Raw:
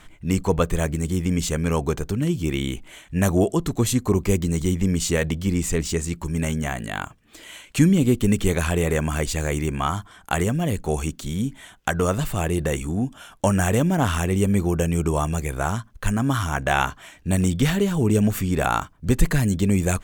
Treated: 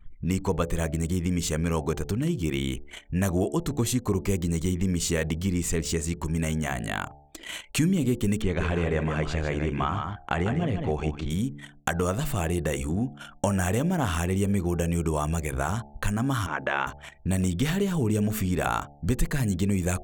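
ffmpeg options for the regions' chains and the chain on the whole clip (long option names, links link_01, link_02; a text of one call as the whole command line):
ffmpeg -i in.wav -filter_complex "[0:a]asettb=1/sr,asplit=3[link_01][link_02][link_03];[link_01]atrim=end=8.424[link_04];[link_02]atrim=start=8.42:end=11.3,asetpts=PTS-STARTPTS,afade=type=in:duration=0.004:curve=qsin,afade=type=out:start_time=2.876:duration=0.004:curve=qsin,lowpass=3300,aecho=1:1:150:0.447,atrim=end_sample=127008[link_05];[link_03]atrim=start=11.296[link_06];[link_04][link_05]acrossfade=duration=0.004:curve1=hsin:curve2=qsin[link_07];[link_07][link_06]acrossfade=duration=0.004:curve1=qsin:curve2=hsin,asettb=1/sr,asplit=3[link_08][link_09][link_10];[link_08]atrim=end=16.464[link_11];[link_09]atrim=start=16.46:end=16.87,asetpts=PTS-STARTPTS,afade=type=in:duration=0.004:curve=qsin,afade=type=out:start_time=0.406:duration=0.004:curve=qsin,highpass=240,lowpass=2700,bandreject=frequency=740:width=5.2[link_12];[link_10]atrim=start=16.866[link_13];[link_11][link_12]acrossfade=duration=0.004:curve1=hsin:curve2=qsin[link_14];[link_14][link_13]acrossfade=duration=0.004:curve1=qsin:curve2=hsin,anlmdn=0.251,bandreject=frequency=72.05:width_type=h:width=4,bandreject=frequency=144.1:width_type=h:width=4,bandreject=frequency=216.15:width_type=h:width=4,bandreject=frequency=288.2:width_type=h:width=4,bandreject=frequency=360.25:width_type=h:width=4,bandreject=frequency=432.3:width_type=h:width=4,bandreject=frequency=504.35:width_type=h:width=4,bandreject=frequency=576.4:width_type=h:width=4,bandreject=frequency=648.45:width_type=h:width=4,bandreject=frequency=720.5:width_type=h:width=4,bandreject=frequency=792.55:width_type=h:width=4,bandreject=frequency=864.6:width_type=h:width=4,acompressor=threshold=-37dB:ratio=2,volume=6dB" out.wav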